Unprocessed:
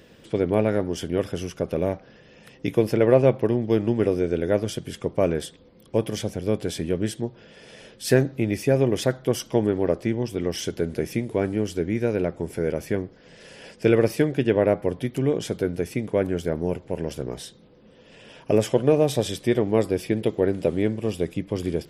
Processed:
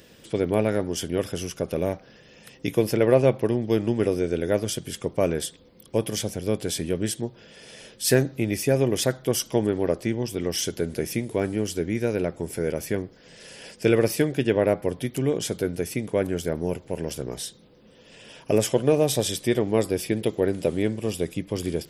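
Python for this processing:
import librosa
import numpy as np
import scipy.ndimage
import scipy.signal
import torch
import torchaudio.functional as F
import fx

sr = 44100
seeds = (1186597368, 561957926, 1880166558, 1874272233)

y = fx.high_shelf(x, sr, hz=4300.0, db=11.0)
y = F.gain(torch.from_numpy(y), -1.5).numpy()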